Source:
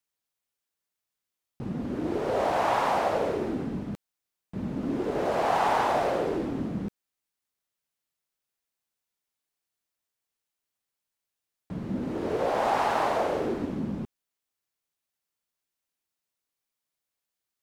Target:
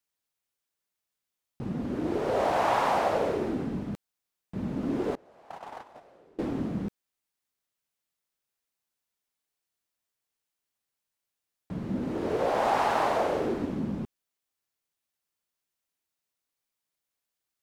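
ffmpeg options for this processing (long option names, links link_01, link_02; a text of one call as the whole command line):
ffmpeg -i in.wav -filter_complex "[0:a]asettb=1/sr,asplit=3[link_01][link_02][link_03];[link_01]atrim=end=5.154[link_04];[link_02]atrim=start=5.15:end=6.39,asetpts=PTS-STARTPTS,afade=type=in:duration=0.004:curve=qsin,afade=type=out:start_time=1.236:duration=0.004:curve=qsin,agate=range=-30dB:threshold=-20dB:ratio=16:detection=peak[link_05];[link_03]atrim=start=6.386[link_06];[link_04][link_05]acrossfade=duration=0.004:curve1=hsin:curve2=qsin[link_07];[link_07][link_06]acrossfade=duration=0.004:curve1=qsin:curve2=hsin" out.wav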